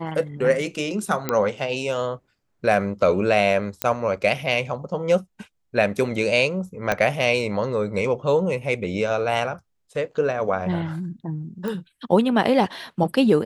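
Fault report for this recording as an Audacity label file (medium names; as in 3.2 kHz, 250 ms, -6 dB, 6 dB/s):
1.290000	1.290000	pop -8 dBFS
3.820000	3.820000	pop -5 dBFS
6.920000	6.920000	pop -7 dBFS
11.680000	11.680000	pop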